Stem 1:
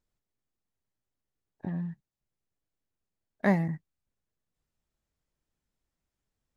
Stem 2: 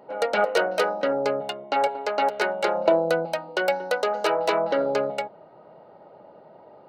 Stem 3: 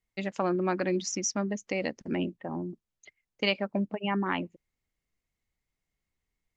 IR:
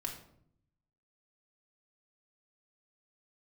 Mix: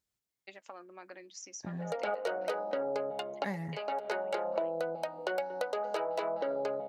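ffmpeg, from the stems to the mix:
-filter_complex "[0:a]highpass=52,highshelf=frequency=2000:gain=10.5,volume=-6.5dB,asplit=2[link_01][link_02];[1:a]equalizer=frequency=600:width_type=o:width=1.9:gain=5.5,adelay=1700,volume=-6.5dB[link_03];[2:a]acompressor=threshold=-32dB:ratio=6,highpass=530,flanger=delay=1.7:depth=6:regen=71:speed=0.39:shape=triangular,adelay=300,volume=-5dB[link_04];[link_02]apad=whole_len=378774[link_05];[link_03][link_05]sidechaincompress=threshold=-48dB:ratio=4:attack=16:release=353[link_06];[link_01][link_06][link_04]amix=inputs=3:normalize=0,acompressor=threshold=-32dB:ratio=4"

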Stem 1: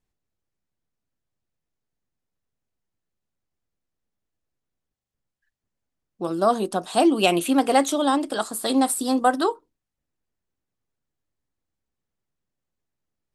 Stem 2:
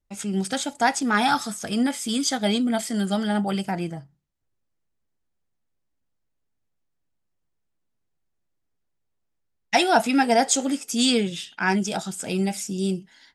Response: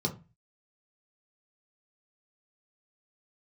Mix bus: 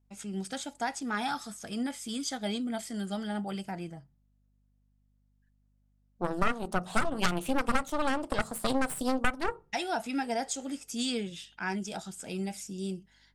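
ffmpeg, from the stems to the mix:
-filter_complex "[0:a]equalizer=frequency=650:width_type=o:width=1.3:gain=8.5,aeval=exprs='1*(cos(1*acos(clip(val(0)/1,-1,1)))-cos(1*PI/2))+0.398*(cos(3*acos(clip(val(0)/1,-1,1)))-cos(3*PI/2))+0.398*(cos(4*acos(clip(val(0)/1,-1,1)))-cos(4*PI/2))+0.0562*(cos(7*acos(clip(val(0)/1,-1,1)))-cos(7*PI/2))':channel_layout=same,volume=-4dB,asplit=2[link_01][link_02];[link_02]volume=-22dB[link_03];[1:a]alimiter=limit=-10.5dB:level=0:latency=1:release=261,aeval=exprs='val(0)+0.00126*(sin(2*PI*50*n/s)+sin(2*PI*2*50*n/s)/2+sin(2*PI*3*50*n/s)/3+sin(2*PI*4*50*n/s)/4+sin(2*PI*5*50*n/s)/5)':channel_layout=same,volume=-10.5dB[link_04];[2:a]atrim=start_sample=2205[link_05];[link_03][link_05]afir=irnorm=-1:irlink=0[link_06];[link_01][link_04][link_06]amix=inputs=3:normalize=0,acompressor=threshold=-23dB:ratio=6"

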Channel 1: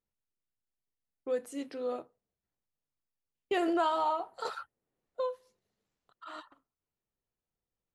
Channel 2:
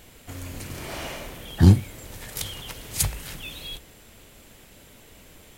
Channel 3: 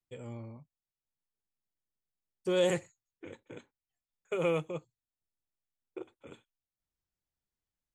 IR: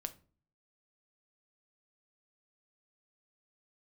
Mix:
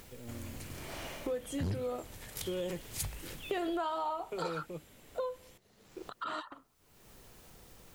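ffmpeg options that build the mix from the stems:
-filter_complex "[0:a]acompressor=mode=upward:threshold=-31dB:ratio=2.5,volume=2dB[link_01];[1:a]asoftclip=type=tanh:threshold=-14dB,volume=-9dB[link_02];[2:a]equalizer=frequency=240:width_type=o:width=1.8:gain=9,volume=-10dB[link_03];[link_01][link_02][link_03]amix=inputs=3:normalize=0,acompressor=threshold=-34dB:ratio=3"

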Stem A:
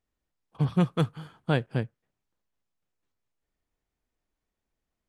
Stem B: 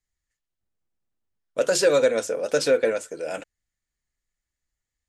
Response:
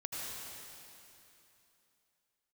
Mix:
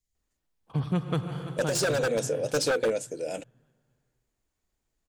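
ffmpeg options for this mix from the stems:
-filter_complex "[0:a]adelay=150,volume=-0.5dB,asplit=3[link_01][link_02][link_03];[link_02]volume=-9.5dB[link_04];[link_03]volume=-15.5dB[link_05];[1:a]equalizer=frequency=1400:width_type=o:width=1.5:gain=-14,aeval=exprs='0.1*(abs(mod(val(0)/0.1+3,4)-2)-1)':channel_layout=same,volume=1dB,asplit=2[link_06][link_07];[link_07]apad=whole_len=230831[link_08];[link_01][link_08]sidechaincompress=threshold=-30dB:ratio=8:attack=16:release=1400[link_09];[2:a]atrim=start_sample=2205[link_10];[link_04][link_10]afir=irnorm=-1:irlink=0[link_11];[link_05]aecho=0:1:331|662|993|1324|1655|1986:1|0.45|0.202|0.0911|0.041|0.0185[link_12];[link_09][link_06][link_11][link_12]amix=inputs=4:normalize=0,alimiter=limit=-18dB:level=0:latency=1:release=165"

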